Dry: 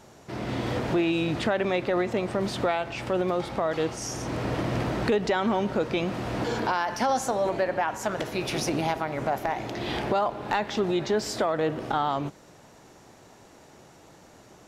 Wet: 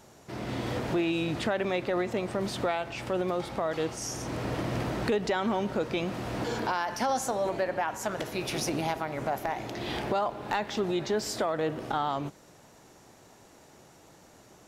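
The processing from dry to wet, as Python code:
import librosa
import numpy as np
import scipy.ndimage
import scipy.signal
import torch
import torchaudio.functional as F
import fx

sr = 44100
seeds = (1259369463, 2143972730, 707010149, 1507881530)

y = fx.high_shelf(x, sr, hz=8100.0, db=7.0)
y = y * 10.0 ** (-3.5 / 20.0)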